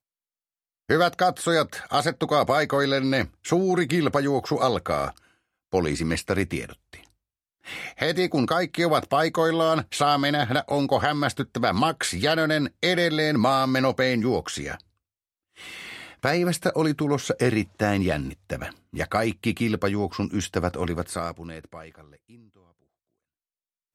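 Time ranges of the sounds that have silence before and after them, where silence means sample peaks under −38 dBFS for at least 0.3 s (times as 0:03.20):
0:00.89–0:05.18
0:05.72–0:07.05
0:07.67–0:14.80
0:15.60–0:22.01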